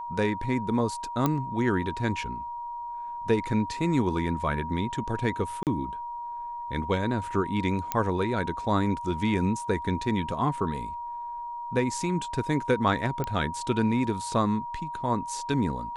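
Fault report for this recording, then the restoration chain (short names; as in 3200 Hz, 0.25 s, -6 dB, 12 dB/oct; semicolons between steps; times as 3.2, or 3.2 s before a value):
tone 950 Hz -33 dBFS
1.26 pop -11 dBFS
5.63–5.67 gap 38 ms
7.92 pop -10 dBFS
13.24 pop -17 dBFS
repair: de-click; notch 950 Hz, Q 30; interpolate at 5.63, 38 ms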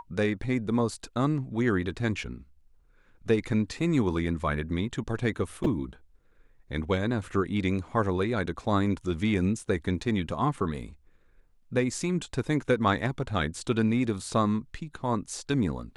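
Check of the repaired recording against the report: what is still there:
none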